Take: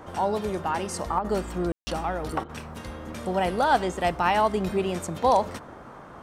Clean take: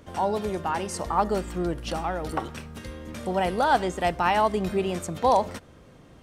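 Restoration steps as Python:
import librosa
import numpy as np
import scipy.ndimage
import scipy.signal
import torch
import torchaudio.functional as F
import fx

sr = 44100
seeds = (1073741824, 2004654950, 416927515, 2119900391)

y = fx.fix_ambience(x, sr, seeds[0], print_start_s=5.71, print_end_s=6.21, start_s=1.72, end_s=1.87)
y = fx.fix_interpolate(y, sr, at_s=(1.19, 2.44), length_ms=51.0)
y = fx.noise_reduce(y, sr, print_start_s=5.71, print_end_s=6.21, reduce_db=6.0)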